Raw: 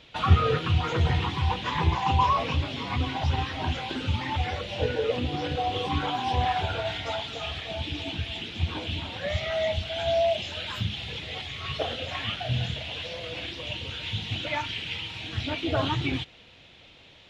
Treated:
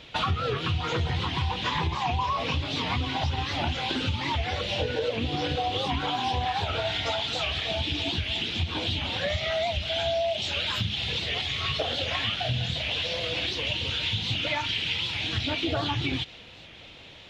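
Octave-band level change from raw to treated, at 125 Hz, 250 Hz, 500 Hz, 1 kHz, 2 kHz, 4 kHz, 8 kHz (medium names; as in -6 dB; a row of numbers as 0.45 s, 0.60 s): -2.5 dB, -0.5 dB, -1.0 dB, -1.5 dB, +2.5 dB, +5.0 dB, no reading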